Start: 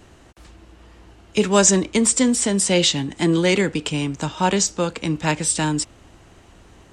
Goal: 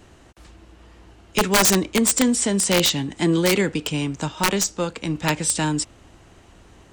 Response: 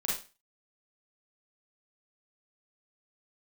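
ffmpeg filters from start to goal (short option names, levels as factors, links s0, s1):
-filter_complex "[0:a]aeval=exprs='(mod(2.66*val(0)+1,2)-1)/2.66':c=same,asettb=1/sr,asplit=3[s0][s1][s2];[s0]atrim=end=4.284[s3];[s1]atrim=start=4.28:end=5.15,asetpts=PTS-STARTPTS,afade=t=in:d=0.004:c=qsin,afade=t=out:st=0.866:d=0.004:c=qsin,aeval=exprs='0.398*(cos(1*acos(clip(val(0)/0.398,-1,1)))-cos(1*PI/2))+0.0398*(cos(2*acos(clip(val(0)/0.398,-1,1)))-cos(2*PI/2))+0.0282*(cos(3*acos(clip(val(0)/0.398,-1,1)))-cos(3*PI/2))+0.00794*(cos(4*acos(clip(val(0)/0.398,-1,1)))-cos(4*PI/2))+0.00282*(cos(6*acos(clip(val(0)/0.398,-1,1)))-cos(6*PI/2))':c=same[s4];[s2]atrim=start=5.146[s5];[s3][s4]acrossfade=d=0.004:c1=hsin:c2=qsin[s6];[s6][s5]acrossfade=d=0.004:c1=qsin:c2=hsin,volume=0.891"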